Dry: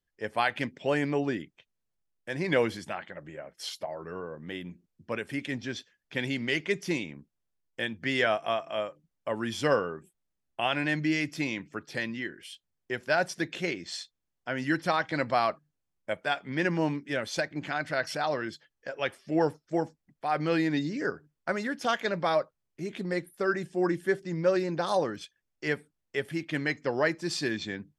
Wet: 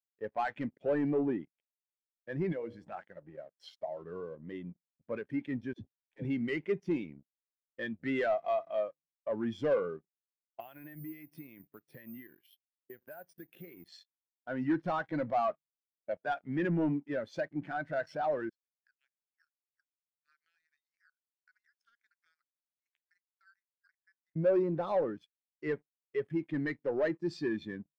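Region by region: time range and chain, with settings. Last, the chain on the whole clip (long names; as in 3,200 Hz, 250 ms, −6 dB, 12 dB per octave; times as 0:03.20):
0:02.52–0:02.92: mains-hum notches 60/120/180/240/300/360/420/480/540/600 Hz + downward compressor 2 to 1, threshold −40 dBFS
0:05.73–0:06.25: tilt shelving filter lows +7.5 dB, about 630 Hz + downward compressor, threshold −31 dBFS + all-pass dispersion lows, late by 80 ms, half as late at 410 Hz
0:10.60–0:13.88: downward compressor 8 to 1, threshold −38 dBFS + bad sample-rate conversion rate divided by 3×, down filtered, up zero stuff
0:18.49–0:24.36: Butterworth high-pass 1,400 Hz 72 dB per octave + downward compressor 10 to 1, threshold −41 dBFS + parametric band 2,600 Hz −8 dB 1.6 octaves
whole clip: high-shelf EQ 3,300 Hz −10.5 dB; leveller curve on the samples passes 3; every bin expanded away from the loudest bin 1.5 to 1; level −6.5 dB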